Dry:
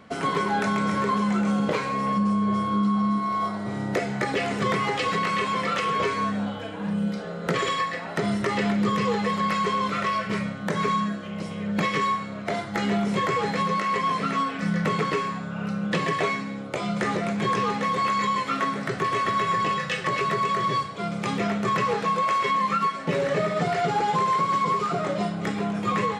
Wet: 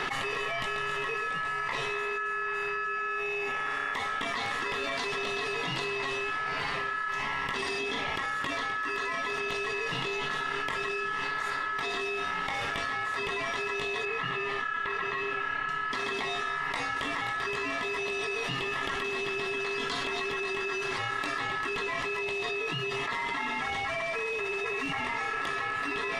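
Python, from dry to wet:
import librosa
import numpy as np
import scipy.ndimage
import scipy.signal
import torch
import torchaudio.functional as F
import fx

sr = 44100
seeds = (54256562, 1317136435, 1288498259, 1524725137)

y = fx.lowpass(x, sr, hz=1000.0, slope=6, at=(14.05, 15.69))
y = y * np.sin(2.0 * np.pi * 1500.0 * np.arange(len(y)) / sr)
y = fx.echo_diffused(y, sr, ms=1001, feedback_pct=43, wet_db=-15.5)
y = fx.env_flatten(y, sr, amount_pct=100)
y = F.gain(torch.from_numpy(y), -8.5).numpy()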